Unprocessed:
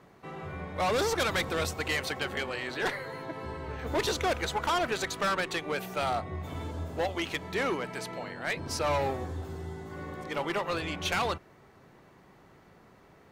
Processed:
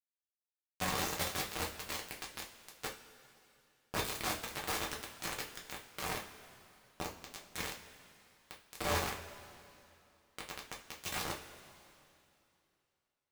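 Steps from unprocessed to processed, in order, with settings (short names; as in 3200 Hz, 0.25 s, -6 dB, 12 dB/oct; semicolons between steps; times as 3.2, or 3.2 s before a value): bit-crush 4-bit; two-slope reverb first 0.3 s, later 2.8 s, from -18 dB, DRR -2 dB; gain -9 dB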